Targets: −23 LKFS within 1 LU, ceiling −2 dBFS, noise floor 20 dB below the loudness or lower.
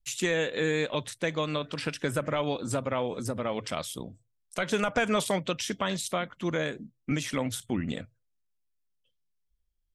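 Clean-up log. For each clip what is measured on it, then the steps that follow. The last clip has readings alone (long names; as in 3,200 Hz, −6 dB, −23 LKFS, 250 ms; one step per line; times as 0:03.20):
integrated loudness −30.5 LKFS; sample peak −15.0 dBFS; target loudness −23.0 LKFS
→ level +7.5 dB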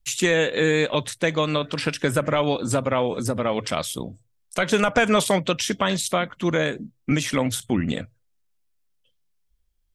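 integrated loudness −23.0 LKFS; sample peak −7.5 dBFS; background noise floor −69 dBFS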